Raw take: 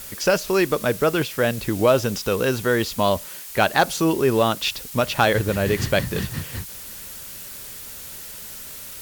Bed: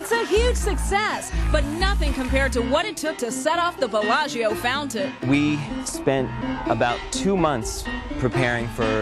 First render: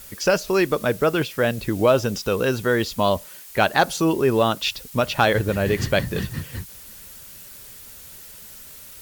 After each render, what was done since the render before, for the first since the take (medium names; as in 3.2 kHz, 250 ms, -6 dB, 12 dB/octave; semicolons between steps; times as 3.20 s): noise reduction 6 dB, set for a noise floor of -37 dBFS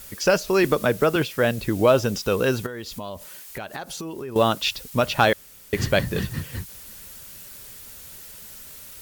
0.64–1.16 s: three bands compressed up and down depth 70%; 2.66–4.36 s: compression 8:1, threshold -30 dBFS; 5.33–5.73 s: room tone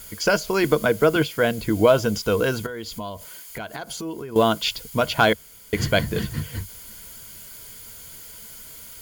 rippled EQ curve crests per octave 1.8, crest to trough 8 dB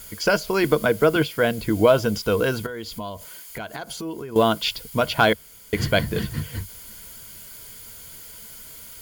dynamic bell 6.7 kHz, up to -5 dB, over -50 dBFS, Q 4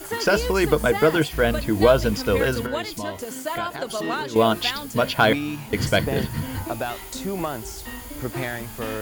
add bed -7.5 dB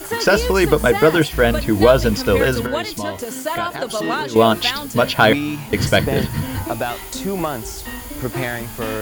trim +5 dB; peak limiter -1 dBFS, peak gain reduction 2 dB